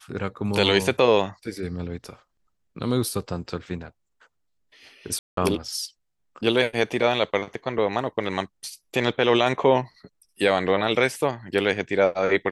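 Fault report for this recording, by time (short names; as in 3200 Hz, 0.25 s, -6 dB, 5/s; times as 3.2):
5.19–5.37 gap 0.183 s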